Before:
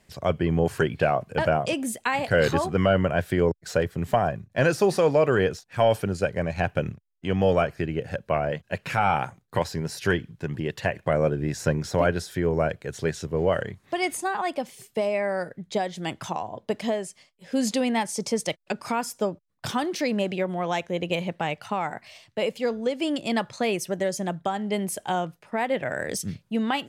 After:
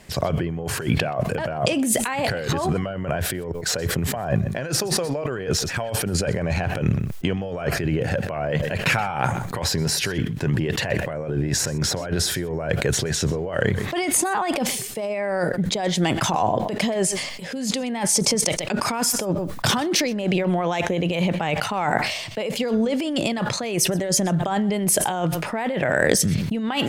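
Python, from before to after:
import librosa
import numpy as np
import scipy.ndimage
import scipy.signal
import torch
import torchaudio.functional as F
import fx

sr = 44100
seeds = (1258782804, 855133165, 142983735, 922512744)

y = fx.over_compress(x, sr, threshold_db=-32.0, ratio=-1.0)
y = y + 10.0 ** (-22.5 / 20.0) * np.pad(y, (int(126 * sr / 1000.0), 0))[:len(y)]
y = fx.sustainer(y, sr, db_per_s=45.0)
y = F.gain(torch.from_numpy(y), 7.5).numpy()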